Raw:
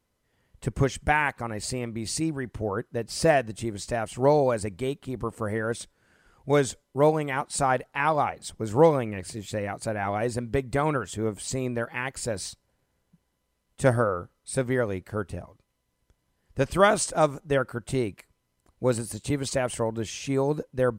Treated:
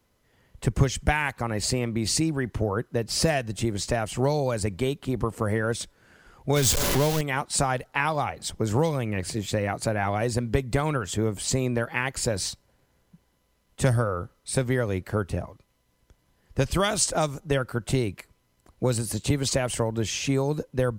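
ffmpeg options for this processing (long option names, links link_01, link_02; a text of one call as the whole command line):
ffmpeg -i in.wav -filter_complex "[0:a]asettb=1/sr,asplit=3[link_01][link_02][link_03];[link_01]atrim=end=6.564[link_04];[link_02]atrim=start=6.56:end=7.21,asetpts=PTS-STARTPTS,afade=type=in:duration=0.004:curve=qsin,afade=type=out:start_time=0.646:duration=0.004:curve=qsin,aeval=exprs='val(0)+0.5*0.0668*sgn(val(0))':channel_layout=same[link_05];[link_03]atrim=start=7.206[link_06];[link_04][link_05]acrossfade=duration=0.004:curve1=hsin:curve2=qsin[link_07];[link_07][link_06]acrossfade=duration=0.004:curve1=qsin:curve2=hsin,equalizer=frequency=8700:width=4.5:gain=-5,acrossover=split=130|3000[link_08][link_09][link_10];[link_09]acompressor=threshold=-30dB:ratio=6[link_11];[link_08][link_11][link_10]amix=inputs=3:normalize=0,volume=7dB" out.wav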